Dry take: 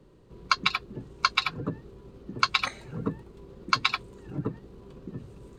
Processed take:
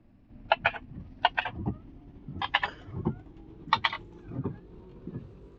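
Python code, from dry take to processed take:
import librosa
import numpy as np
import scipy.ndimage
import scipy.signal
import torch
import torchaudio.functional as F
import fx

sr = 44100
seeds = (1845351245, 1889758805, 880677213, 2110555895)

y = fx.pitch_glide(x, sr, semitones=-9.0, runs='ending unshifted')
y = fx.air_absorb(y, sr, metres=160.0)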